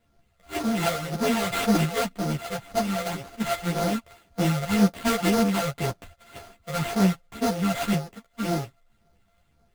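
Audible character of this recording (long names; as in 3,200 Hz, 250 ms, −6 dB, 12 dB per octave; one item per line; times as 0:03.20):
a buzz of ramps at a fixed pitch in blocks of 64 samples
phaser sweep stages 12, 1.9 Hz, lowest notch 270–3,000 Hz
aliases and images of a low sample rate 5,500 Hz, jitter 20%
a shimmering, thickened sound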